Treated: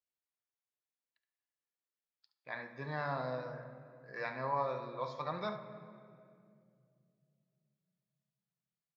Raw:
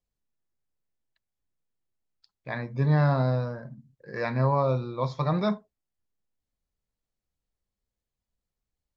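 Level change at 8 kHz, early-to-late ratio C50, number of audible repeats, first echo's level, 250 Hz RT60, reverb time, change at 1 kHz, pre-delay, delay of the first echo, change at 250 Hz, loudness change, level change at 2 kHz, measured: no reading, 8.0 dB, 1, -12.0 dB, 3.4 s, 2.3 s, -7.0 dB, 4 ms, 71 ms, -18.0 dB, -13.0 dB, -6.0 dB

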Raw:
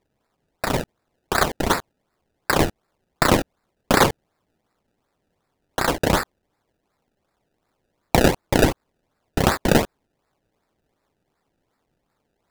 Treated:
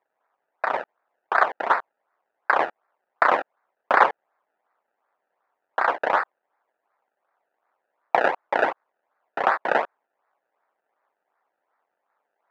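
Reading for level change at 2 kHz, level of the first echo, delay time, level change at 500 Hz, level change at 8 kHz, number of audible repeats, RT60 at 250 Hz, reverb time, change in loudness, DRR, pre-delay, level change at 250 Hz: +1.0 dB, no echo, no echo, -4.0 dB, under -25 dB, no echo, no reverb, no reverb, -2.0 dB, no reverb, no reverb, -17.5 dB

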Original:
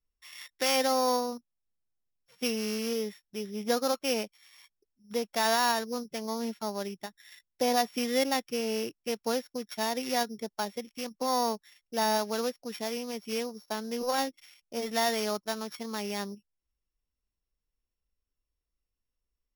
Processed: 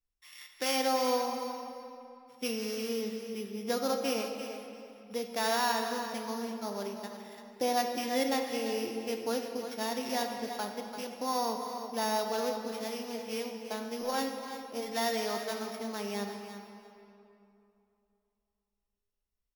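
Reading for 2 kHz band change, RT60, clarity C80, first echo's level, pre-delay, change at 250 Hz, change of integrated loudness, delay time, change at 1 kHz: -2.5 dB, 2.8 s, 4.5 dB, -10.5 dB, 11 ms, -2.0 dB, -2.5 dB, 340 ms, -2.0 dB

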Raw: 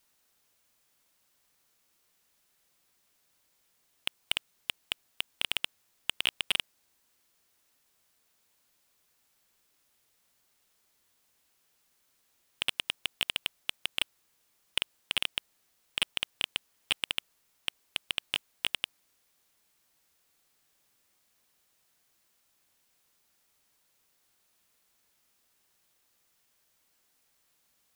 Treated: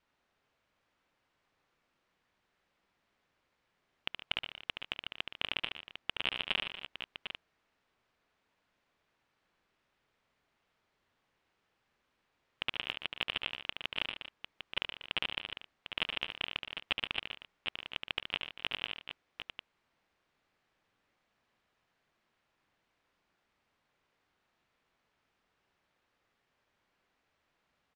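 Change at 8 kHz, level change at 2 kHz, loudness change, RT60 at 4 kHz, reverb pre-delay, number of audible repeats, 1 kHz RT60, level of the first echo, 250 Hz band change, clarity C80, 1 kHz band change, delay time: under -20 dB, -1.5 dB, -4.0 dB, no reverb, no reverb, 4, no reverb, -7.0 dB, +1.5 dB, no reverb, +1.5 dB, 72 ms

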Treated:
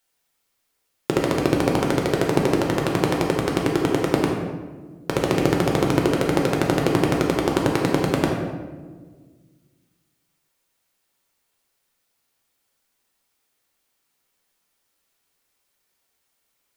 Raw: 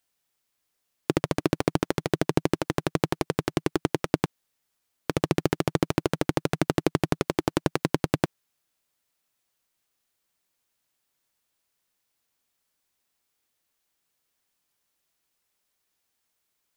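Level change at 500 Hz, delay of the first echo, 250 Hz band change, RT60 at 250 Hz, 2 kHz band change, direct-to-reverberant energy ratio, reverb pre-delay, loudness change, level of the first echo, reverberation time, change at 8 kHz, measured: +7.0 dB, no echo, +6.0 dB, 2.2 s, +6.0 dB, -1.0 dB, 6 ms, +6.0 dB, no echo, 1.5 s, +4.5 dB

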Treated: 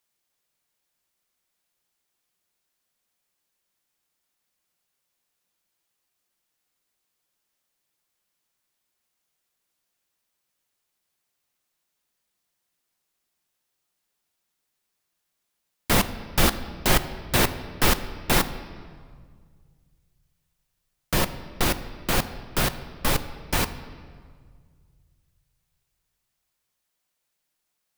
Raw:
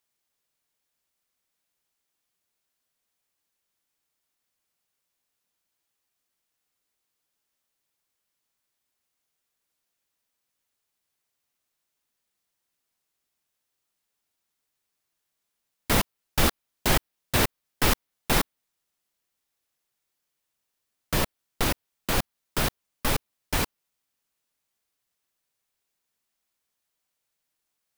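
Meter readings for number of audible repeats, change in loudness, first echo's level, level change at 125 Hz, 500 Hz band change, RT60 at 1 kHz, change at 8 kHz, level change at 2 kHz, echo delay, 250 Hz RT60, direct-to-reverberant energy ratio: no echo, +2.5 dB, no echo, +2.5 dB, +2.5 dB, 1.8 s, +2.0 dB, +2.5 dB, no echo, 2.3 s, 10.0 dB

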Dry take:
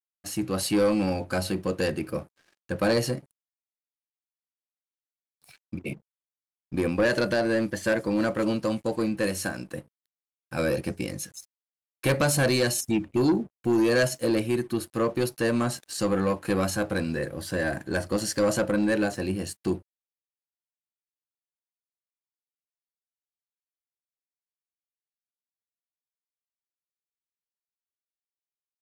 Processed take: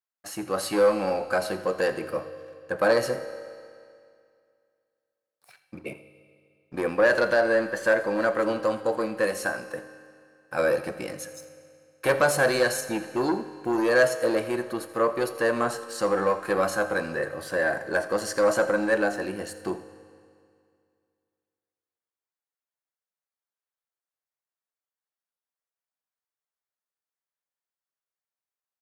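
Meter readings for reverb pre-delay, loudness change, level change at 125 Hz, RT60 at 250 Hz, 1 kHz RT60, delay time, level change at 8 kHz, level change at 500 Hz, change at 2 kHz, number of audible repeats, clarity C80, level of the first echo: 4 ms, +1.0 dB, -9.5 dB, 2.3 s, 2.3 s, 84 ms, -3.0 dB, +3.0 dB, +4.5 dB, 1, 12.0 dB, -17.5 dB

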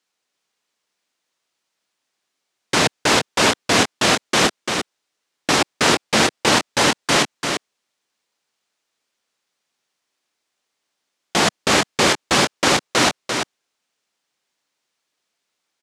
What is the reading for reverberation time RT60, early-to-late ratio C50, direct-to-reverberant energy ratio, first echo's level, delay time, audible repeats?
no reverb, no reverb, no reverb, -5.5 dB, 343 ms, 1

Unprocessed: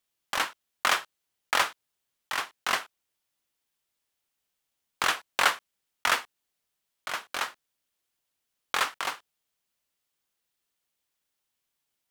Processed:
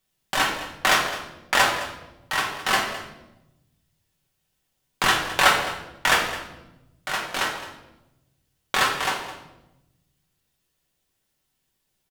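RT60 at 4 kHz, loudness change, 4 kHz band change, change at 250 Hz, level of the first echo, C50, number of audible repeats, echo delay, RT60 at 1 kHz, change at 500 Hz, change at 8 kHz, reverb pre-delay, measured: 0.80 s, +6.0 dB, +6.5 dB, +13.0 dB, -14.5 dB, 5.0 dB, 1, 212 ms, 0.85 s, +9.5 dB, +6.0 dB, 5 ms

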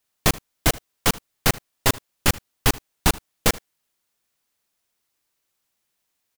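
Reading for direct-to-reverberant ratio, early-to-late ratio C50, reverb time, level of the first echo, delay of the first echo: no reverb, no reverb, no reverb, -22.0 dB, 77 ms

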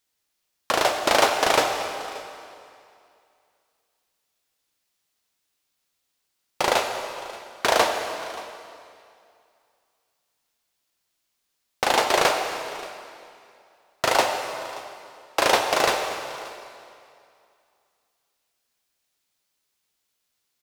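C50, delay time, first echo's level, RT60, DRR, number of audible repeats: 5.0 dB, 579 ms, -20.0 dB, 2.4 s, 4.0 dB, 1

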